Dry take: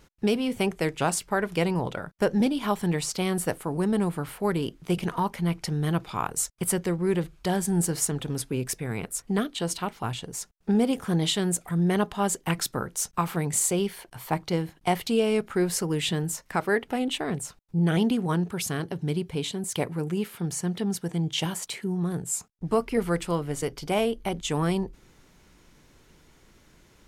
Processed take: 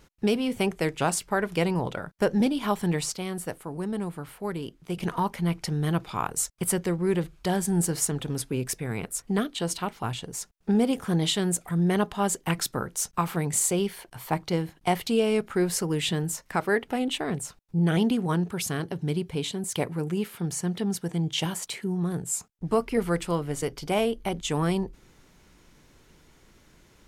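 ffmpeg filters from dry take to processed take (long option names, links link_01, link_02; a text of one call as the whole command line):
ffmpeg -i in.wav -filter_complex "[0:a]asplit=3[link_01][link_02][link_03];[link_01]atrim=end=3.142[link_04];[link_02]atrim=start=3.138:end=5.002,asetpts=PTS-STARTPTS,volume=-6dB[link_05];[link_03]atrim=start=4.998[link_06];[link_04][link_05]acrossfade=duration=0.004:curve1=hsin:curve2=hsin[link_07];[link_07][link_06]acrossfade=duration=0.004:curve1=hsin:curve2=hsin" out.wav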